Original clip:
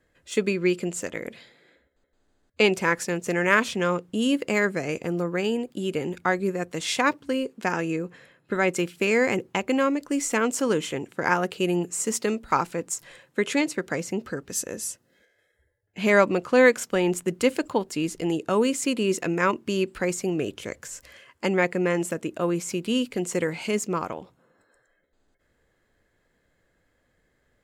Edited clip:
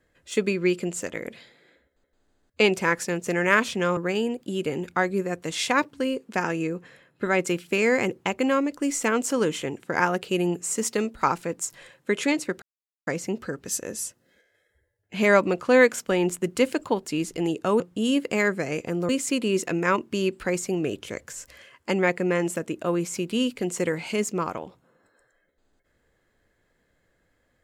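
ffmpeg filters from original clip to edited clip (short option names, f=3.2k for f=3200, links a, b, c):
-filter_complex "[0:a]asplit=5[a][b][c][d][e];[a]atrim=end=3.972[f];[b]atrim=start=5.258:end=13.91,asetpts=PTS-STARTPTS,afade=t=out:st=8.648:d=0.004:c=hsin,apad=pad_dur=0.45[g];[c]atrim=start=13.91:end=18.642,asetpts=PTS-STARTPTS,afade=t=in:d=0.004:c=hsin[h];[d]atrim=start=3.968:end=5.262[i];[e]atrim=start=18.638[j];[g][h]concat=n=2:v=0:a=1[k];[f][k]acrossfade=d=0.004:c1=hsin:c2=hsin[l];[l][i]acrossfade=d=0.004:c1=hsin:c2=hsin[m];[m][j]acrossfade=d=0.004:c1=hsin:c2=hsin"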